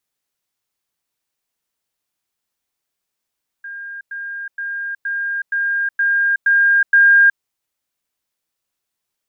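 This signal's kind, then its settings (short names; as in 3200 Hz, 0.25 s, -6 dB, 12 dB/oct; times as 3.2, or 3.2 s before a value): level ladder 1610 Hz -28 dBFS, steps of 3 dB, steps 8, 0.37 s 0.10 s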